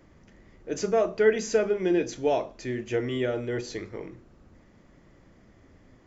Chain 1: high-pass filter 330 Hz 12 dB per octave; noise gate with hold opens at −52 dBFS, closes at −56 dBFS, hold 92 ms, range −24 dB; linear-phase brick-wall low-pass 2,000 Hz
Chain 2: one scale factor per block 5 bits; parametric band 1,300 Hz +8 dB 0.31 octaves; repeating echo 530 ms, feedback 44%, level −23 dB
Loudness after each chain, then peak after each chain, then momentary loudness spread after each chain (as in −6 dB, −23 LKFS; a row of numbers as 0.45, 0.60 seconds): −29.0, −27.0 LKFS; −10.0, −9.5 dBFS; 16, 15 LU